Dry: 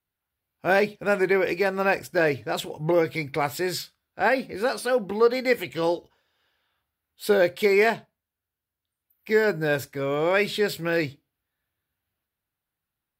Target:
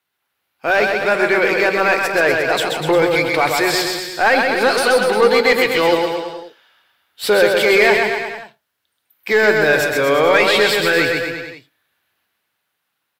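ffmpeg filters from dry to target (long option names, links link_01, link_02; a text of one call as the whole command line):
ffmpeg -i in.wav -filter_complex "[0:a]highpass=110,highshelf=frequency=2400:gain=9.5,asplit=2[link_01][link_02];[link_02]alimiter=limit=-16.5dB:level=0:latency=1,volume=-1.5dB[link_03];[link_01][link_03]amix=inputs=2:normalize=0,dynaudnorm=framelen=650:gausssize=7:maxgain=11.5dB,asplit=2[link_04][link_05];[link_05]highpass=frequency=720:poles=1,volume=14dB,asoftclip=type=tanh:threshold=-2dB[link_06];[link_04][link_06]amix=inputs=2:normalize=0,lowpass=frequency=2000:poles=1,volume=-6dB,asplit=2[link_07][link_08];[link_08]aecho=0:1:130|247|352.3|447.1|532.4:0.631|0.398|0.251|0.158|0.1[link_09];[link_07][link_09]amix=inputs=2:normalize=0,volume=-2dB" out.wav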